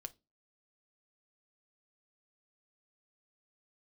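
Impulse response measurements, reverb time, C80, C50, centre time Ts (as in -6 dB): 0.25 s, 31.5 dB, 23.0 dB, 3 ms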